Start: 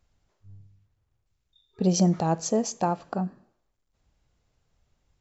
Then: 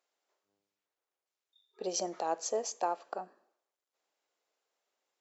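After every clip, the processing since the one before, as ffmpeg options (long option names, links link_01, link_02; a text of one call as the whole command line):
ffmpeg -i in.wav -af "highpass=frequency=390:width=0.5412,highpass=frequency=390:width=1.3066,volume=-5.5dB" out.wav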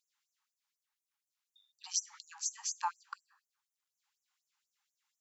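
ffmpeg -i in.wav -af "afftfilt=real='re*gte(b*sr/1024,740*pow(5900/740,0.5+0.5*sin(2*PI*4.1*pts/sr)))':imag='im*gte(b*sr/1024,740*pow(5900/740,0.5+0.5*sin(2*PI*4.1*pts/sr)))':win_size=1024:overlap=0.75,volume=2.5dB" out.wav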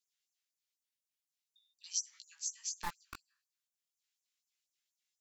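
ffmpeg -i in.wav -filter_complex "[0:a]flanger=delay=15.5:depth=5.5:speed=0.42,acrossover=split=1900|2500|3900[link_01][link_02][link_03][link_04];[link_01]acrusher=bits=4:dc=4:mix=0:aa=0.000001[link_05];[link_05][link_02][link_03][link_04]amix=inputs=4:normalize=0,volume=1dB" out.wav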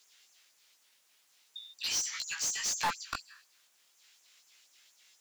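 ffmpeg -i in.wav -filter_complex "[0:a]asplit=2[link_01][link_02];[link_02]highpass=frequency=720:poles=1,volume=34dB,asoftclip=type=tanh:threshold=-21.5dB[link_03];[link_01][link_03]amix=inputs=2:normalize=0,lowpass=frequency=4600:poles=1,volume=-6dB" out.wav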